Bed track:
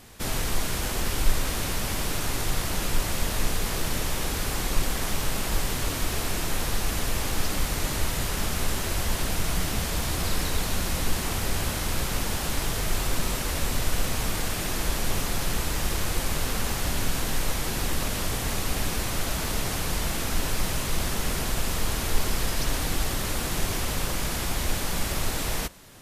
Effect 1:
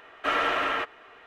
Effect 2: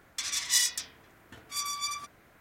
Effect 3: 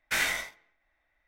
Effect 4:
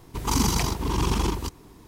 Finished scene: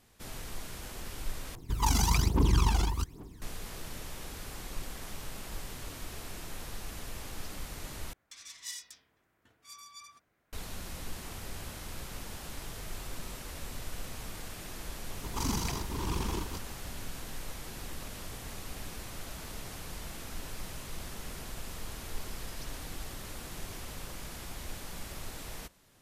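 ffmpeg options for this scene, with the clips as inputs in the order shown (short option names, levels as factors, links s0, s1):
-filter_complex "[4:a]asplit=2[s0][s1];[0:a]volume=0.188[s2];[s0]aphaser=in_gain=1:out_gain=1:delay=1.5:decay=0.72:speed=1.2:type=triangular[s3];[s2]asplit=3[s4][s5][s6];[s4]atrim=end=1.554[s7];[s3]atrim=end=1.87,asetpts=PTS-STARTPTS,volume=0.447[s8];[s5]atrim=start=3.416:end=8.134[s9];[2:a]atrim=end=2.4,asetpts=PTS-STARTPTS,volume=0.15[s10];[s6]atrim=start=10.526[s11];[s1]atrim=end=1.87,asetpts=PTS-STARTPTS,volume=0.316,afade=t=in:d=0.004:c=hsin,afade=t=out:st=1.866:d=0.004:c=hsin,adelay=15090[s12];[s7][s8]acrossfade=d=0.004:c1=hsin:c2=hsin[s13];[s13][s9]acrossfade=d=0.004:c1=hsin:c2=hsin[s14];[s14][s10]acrossfade=d=0.004:c1=hsin:c2=hsin[s15];[s15][s11]acrossfade=d=0.004:c1=hsin:c2=hsin[s16];[s16][s12]amix=inputs=2:normalize=0"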